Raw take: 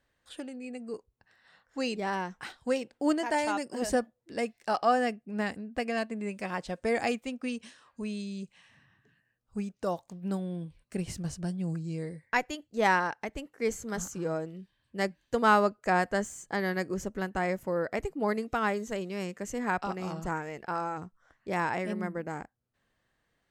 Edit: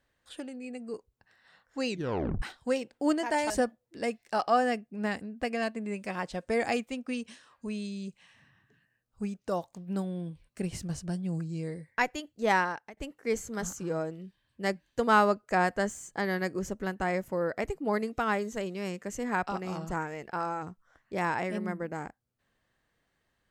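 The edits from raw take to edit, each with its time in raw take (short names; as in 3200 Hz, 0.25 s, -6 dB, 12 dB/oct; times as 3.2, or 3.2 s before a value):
1.89 tape stop 0.53 s
3.5–3.85 cut
12.73–13.32 fade out equal-power, to -18 dB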